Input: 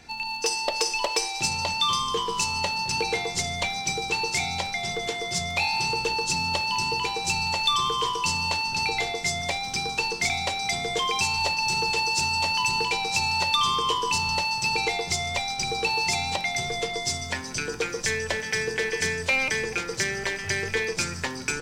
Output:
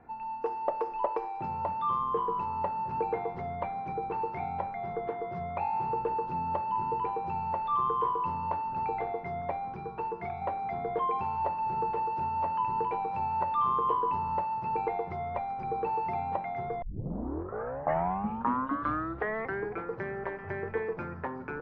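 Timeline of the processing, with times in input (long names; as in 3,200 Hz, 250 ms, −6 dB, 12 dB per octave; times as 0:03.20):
0:09.74–0:10.42: notch comb filter 260 Hz
0:16.82: tape start 3.05 s
whole clip: low-pass filter 1,200 Hz 24 dB per octave; spectral tilt +2 dB per octave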